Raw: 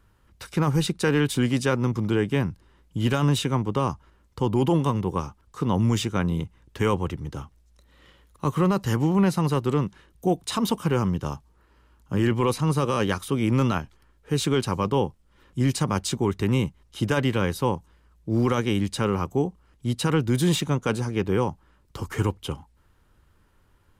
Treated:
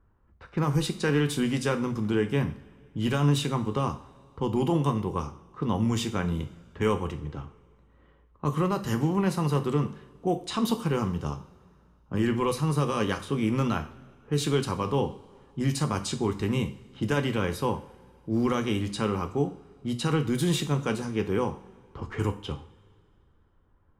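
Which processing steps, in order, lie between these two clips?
level-controlled noise filter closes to 1.2 kHz, open at -21 dBFS; two-slope reverb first 0.43 s, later 2.4 s, from -21 dB, DRR 6 dB; trim -4 dB

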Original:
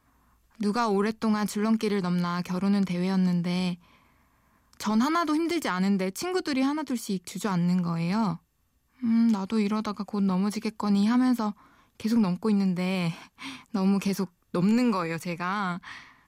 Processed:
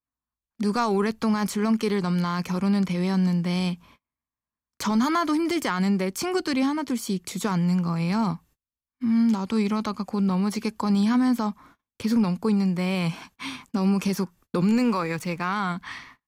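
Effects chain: gate -53 dBFS, range -35 dB; in parallel at -2.5 dB: compression, threshold -32 dBFS, peak gain reduction 12 dB; 14.76–15.46 s: on the sum: hysteresis with a dead band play -45.5 dBFS

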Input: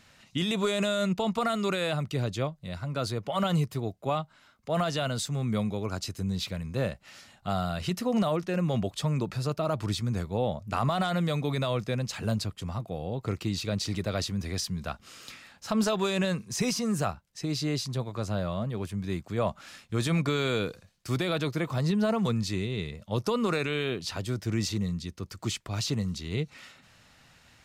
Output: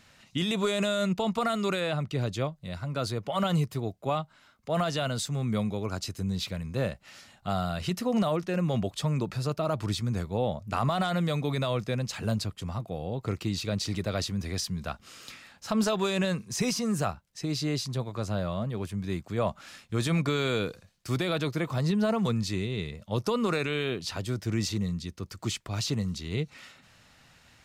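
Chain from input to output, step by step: 1.79–2.20 s: treble shelf 6 kHz -> 8.6 kHz -9.5 dB

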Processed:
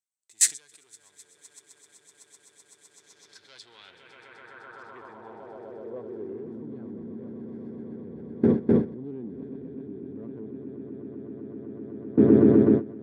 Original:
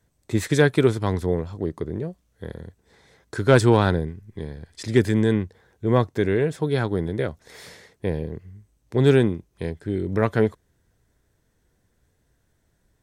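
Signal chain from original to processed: echo with a slow build-up 127 ms, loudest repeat 8, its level -12 dB; waveshaping leveller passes 2; in parallel at +2.5 dB: compressor with a negative ratio -21 dBFS, ratio -0.5; on the sum: gate with hold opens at 0 dBFS; band-pass sweep 7.8 kHz -> 260 Hz, 2.89–6.63 s

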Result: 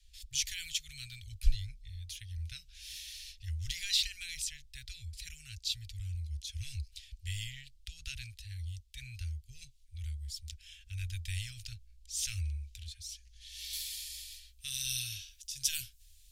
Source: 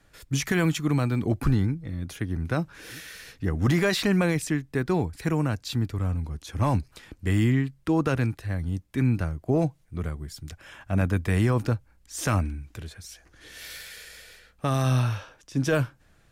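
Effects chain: inverse Chebyshev band-stop 180–1100 Hz, stop band 60 dB; treble shelf 7.9 kHz -11.5 dB, from 13.73 s +2 dB, from 14.89 s +9 dB; trim +4 dB

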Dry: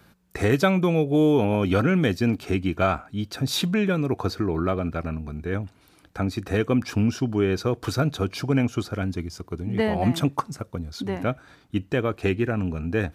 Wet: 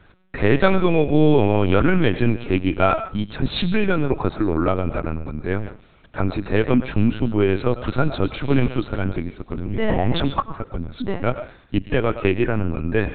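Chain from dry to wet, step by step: 8.32–8.78 s: short-mantissa float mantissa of 2-bit; 9.50–10.33 s: transient shaper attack -8 dB, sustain +7 dB; reverberation RT60 0.35 s, pre-delay 70 ms, DRR 11 dB; LPC vocoder at 8 kHz pitch kept; trim +4.5 dB

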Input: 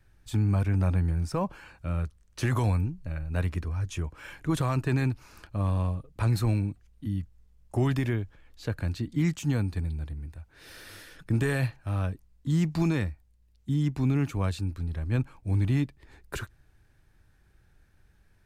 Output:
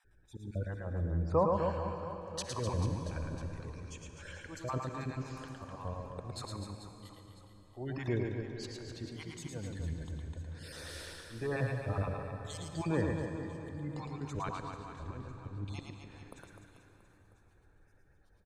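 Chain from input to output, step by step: random holes in the spectrogram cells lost 25%; slow attack 409 ms; spectral gate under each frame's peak -30 dB strong; low-pass that closes with the level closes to 2.3 kHz, closed at -26 dBFS; ten-band graphic EQ 500 Hz +10 dB, 1 kHz +6 dB, 4 kHz +6 dB, 8 kHz +10 dB; reverse bouncing-ball echo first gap 110 ms, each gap 1.3×, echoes 5; on a send at -7 dB: reverberation RT60 3.9 s, pre-delay 48 ms; on the sum: trim -7 dB

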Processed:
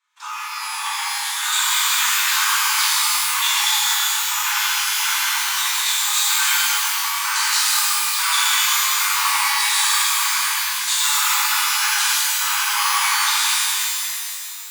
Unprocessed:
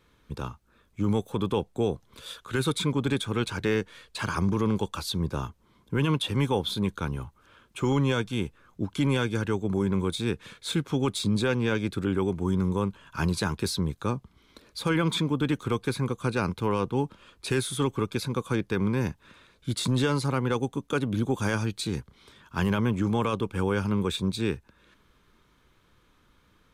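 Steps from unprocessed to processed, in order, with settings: backward echo that repeats 184 ms, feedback 66%, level -6 dB; de-esser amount 50%; treble shelf 4.8 kHz -10 dB; on a send: feedback echo behind a high-pass 189 ms, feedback 43%, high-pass 3.2 kHz, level -9 dB; on the sum: waveshaping leveller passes 3; time stretch by phase-locked vocoder 0.55×; steep high-pass 850 Hz 96 dB/octave; reverse; upward compressor, threshold -42 dBFS; reverse; peaking EQ 7.1 kHz +13.5 dB 0.74 oct; pitch-shifted reverb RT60 2.1 s, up +12 st, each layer -2 dB, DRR -9.5 dB; trim -3.5 dB

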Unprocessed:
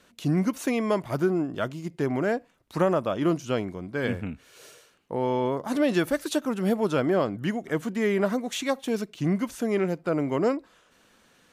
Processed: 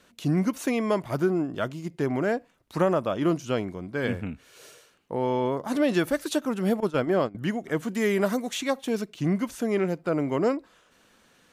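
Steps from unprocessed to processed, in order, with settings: 6.80–7.35 s: gate -24 dBFS, range -16 dB; 7.89–8.49 s: treble shelf 5.3 kHz +11 dB

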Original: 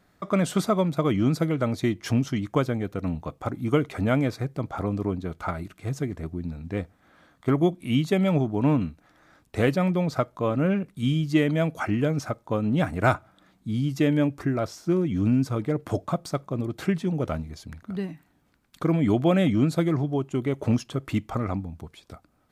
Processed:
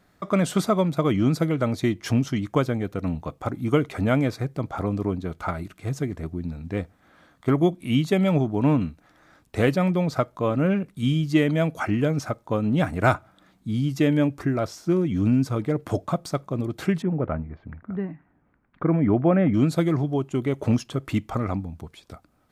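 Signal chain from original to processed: 17.02–19.54 s: low-pass 2 kHz 24 dB/octave; trim +1.5 dB

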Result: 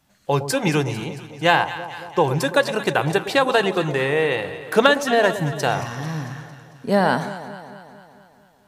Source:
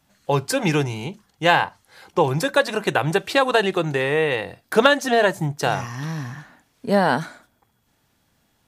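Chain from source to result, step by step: echo whose repeats swap between lows and highs 112 ms, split 930 Hz, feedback 76%, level -11 dB

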